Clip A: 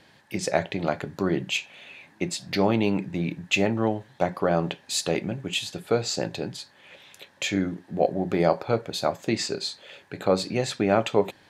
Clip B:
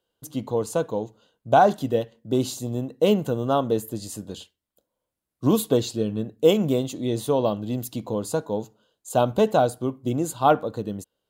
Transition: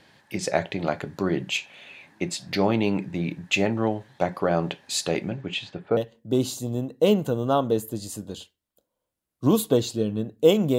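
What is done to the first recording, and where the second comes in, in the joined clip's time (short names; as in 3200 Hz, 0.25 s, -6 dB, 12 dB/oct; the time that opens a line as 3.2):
clip A
5.29–5.97 LPF 6900 Hz -> 1200 Hz
5.97 switch to clip B from 1.97 s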